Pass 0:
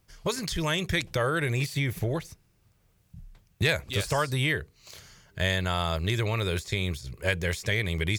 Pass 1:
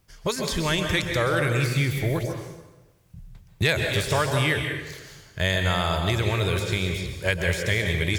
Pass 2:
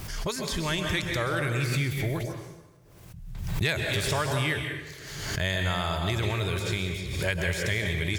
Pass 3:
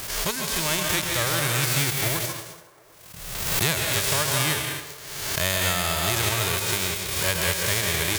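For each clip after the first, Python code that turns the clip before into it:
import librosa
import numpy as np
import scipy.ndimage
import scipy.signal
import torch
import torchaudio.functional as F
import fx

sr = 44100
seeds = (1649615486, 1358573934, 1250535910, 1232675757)

y1 = fx.rev_plate(x, sr, seeds[0], rt60_s=1.1, hf_ratio=0.8, predelay_ms=115, drr_db=3.5)
y1 = y1 * 10.0 ** (2.5 / 20.0)
y2 = fx.peak_eq(y1, sr, hz=500.0, db=-5.5, octaves=0.24)
y2 = fx.pre_swell(y2, sr, db_per_s=41.0)
y2 = y2 * 10.0 ** (-4.5 / 20.0)
y3 = fx.envelope_flatten(y2, sr, power=0.3)
y3 = fx.leveller(y3, sr, passes=1)
y3 = fx.echo_wet_bandpass(y3, sr, ms=376, feedback_pct=45, hz=740.0, wet_db=-18.0)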